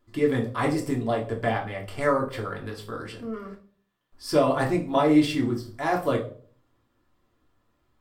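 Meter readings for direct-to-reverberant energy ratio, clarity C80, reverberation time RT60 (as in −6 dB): −1.0 dB, 16.0 dB, 0.45 s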